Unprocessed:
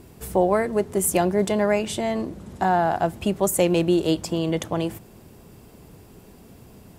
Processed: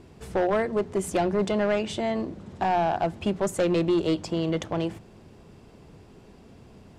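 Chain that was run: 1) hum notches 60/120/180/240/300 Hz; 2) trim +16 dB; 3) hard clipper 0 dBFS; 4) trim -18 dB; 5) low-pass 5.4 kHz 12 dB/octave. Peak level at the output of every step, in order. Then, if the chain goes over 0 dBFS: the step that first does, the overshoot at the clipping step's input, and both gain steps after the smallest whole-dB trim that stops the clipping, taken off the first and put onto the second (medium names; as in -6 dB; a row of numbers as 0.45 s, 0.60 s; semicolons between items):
-7.0 dBFS, +9.0 dBFS, 0.0 dBFS, -18.0 dBFS, -17.5 dBFS; step 2, 9.0 dB; step 2 +7 dB, step 4 -9 dB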